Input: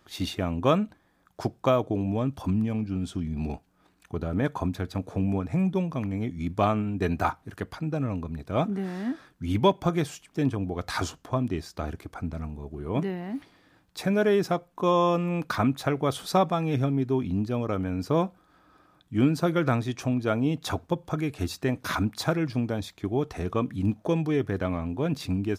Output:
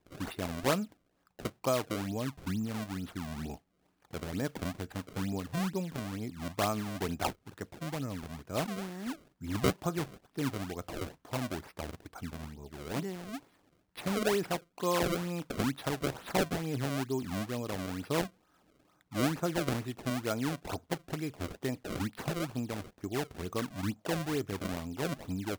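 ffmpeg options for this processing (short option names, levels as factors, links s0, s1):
-af "acrusher=samples=29:mix=1:aa=0.000001:lfo=1:lforange=46.4:lforate=2.2,lowshelf=f=130:g=-4.5,volume=0.447"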